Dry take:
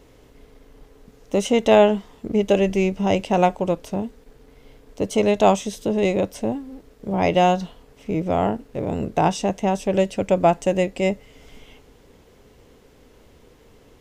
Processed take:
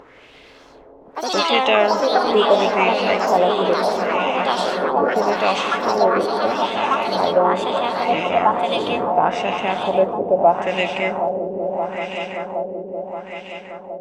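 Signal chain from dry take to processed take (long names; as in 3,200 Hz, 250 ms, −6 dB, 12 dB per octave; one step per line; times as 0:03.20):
RIAA equalisation recording
echo that builds up and dies away 192 ms, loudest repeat 5, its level −12 dB
in parallel at −1 dB: brickwall limiter −11 dBFS, peak gain reduction 9 dB
on the sum: auto-filter low-pass sine 0.76 Hz 420–2,800 Hz
delay with pitch and tempo change per echo 165 ms, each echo +4 semitones, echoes 3
upward compression, threshold −32 dBFS
level −6 dB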